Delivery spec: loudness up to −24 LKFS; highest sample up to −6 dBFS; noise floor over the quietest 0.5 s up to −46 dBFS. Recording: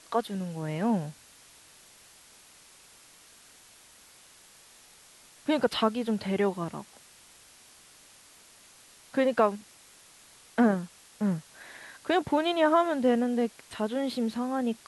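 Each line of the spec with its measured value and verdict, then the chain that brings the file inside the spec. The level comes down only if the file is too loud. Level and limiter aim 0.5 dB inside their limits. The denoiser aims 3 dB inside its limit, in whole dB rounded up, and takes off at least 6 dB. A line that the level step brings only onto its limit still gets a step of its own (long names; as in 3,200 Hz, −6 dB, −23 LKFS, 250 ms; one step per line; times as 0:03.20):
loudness −28.5 LKFS: in spec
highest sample −10.5 dBFS: in spec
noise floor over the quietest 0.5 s −55 dBFS: in spec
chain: no processing needed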